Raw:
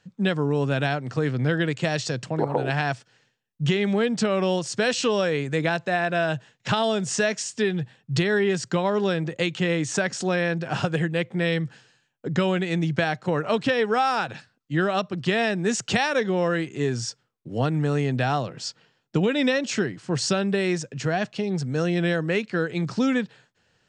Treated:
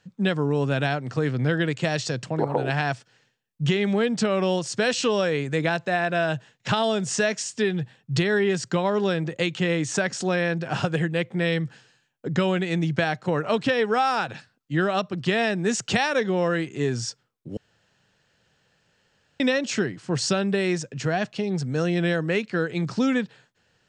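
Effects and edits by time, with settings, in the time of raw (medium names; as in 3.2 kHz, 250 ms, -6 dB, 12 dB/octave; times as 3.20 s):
17.57–19.40 s: room tone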